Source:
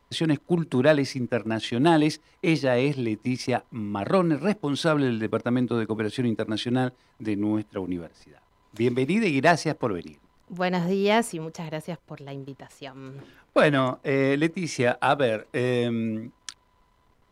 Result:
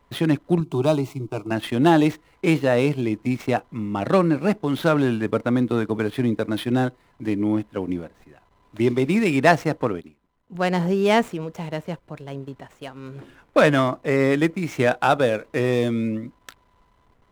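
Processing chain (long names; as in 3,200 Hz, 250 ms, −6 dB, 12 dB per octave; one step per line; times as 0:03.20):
running median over 9 samples
0:00.60–0:01.51: phaser with its sweep stopped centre 350 Hz, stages 8
0:09.86–0:10.55: expander for the loud parts 1.5 to 1, over −51 dBFS
level +3.5 dB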